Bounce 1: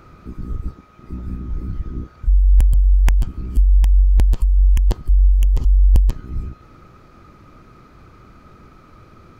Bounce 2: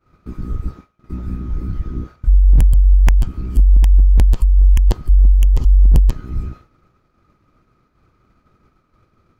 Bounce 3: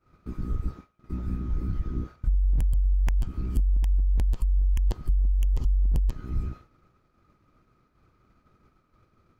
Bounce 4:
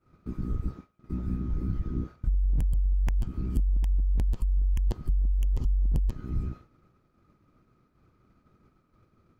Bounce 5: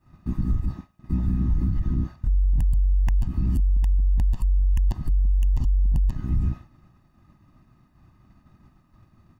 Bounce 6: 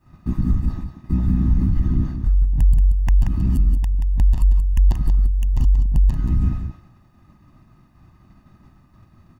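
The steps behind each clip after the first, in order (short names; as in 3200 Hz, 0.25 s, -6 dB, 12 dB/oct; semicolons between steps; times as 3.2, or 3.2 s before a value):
expander -33 dBFS; wavefolder -7 dBFS; gain +3 dB
compressor 10:1, threshold -14 dBFS, peak gain reduction 8.5 dB; gain -5.5 dB
bell 200 Hz +5.5 dB 2.7 oct; gain -3.5 dB
comb 1.1 ms, depth 82%; limiter -20.5 dBFS, peak gain reduction 10 dB; gain +5 dB
echo 0.18 s -8 dB; gain +4.5 dB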